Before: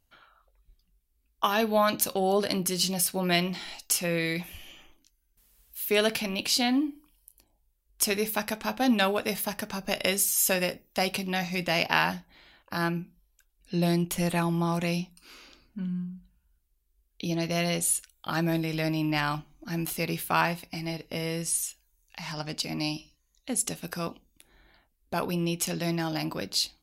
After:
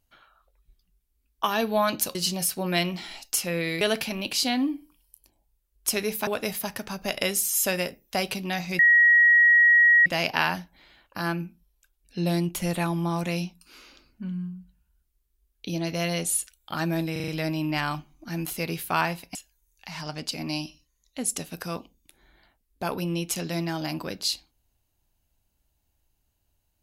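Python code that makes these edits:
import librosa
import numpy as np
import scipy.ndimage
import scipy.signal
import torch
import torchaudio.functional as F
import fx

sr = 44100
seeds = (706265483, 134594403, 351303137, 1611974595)

y = fx.edit(x, sr, fx.cut(start_s=2.15, length_s=0.57),
    fx.cut(start_s=4.38, length_s=1.57),
    fx.cut(start_s=8.41, length_s=0.69),
    fx.insert_tone(at_s=11.62, length_s=1.27, hz=1900.0, db=-13.5),
    fx.stutter(start_s=18.68, slice_s=0.04, count=5),
    fx.cut(start_s=20.75, length_s=0.91), tone=tone)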